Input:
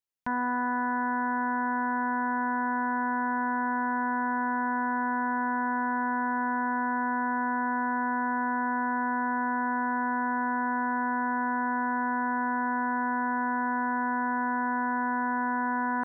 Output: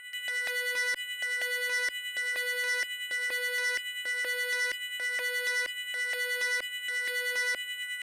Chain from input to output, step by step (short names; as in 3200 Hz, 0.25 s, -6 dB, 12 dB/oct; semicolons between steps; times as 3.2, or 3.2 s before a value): harmonic tremolo 4.7 Hz, depth 70%, crossover 730 Hz; LFO high-pass square 0.53 Hz 320–1800 Hz; fixed phaser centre 350 Hz, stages 8; sample-and-hold 8×; air absorption 97 m; on a send: reverse echo 0.384 s -8.5 dB; on the sum: speed mistake 7.5 ips tape played at 15 ips; core saturation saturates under 3400 Hz; gain +7.5 dB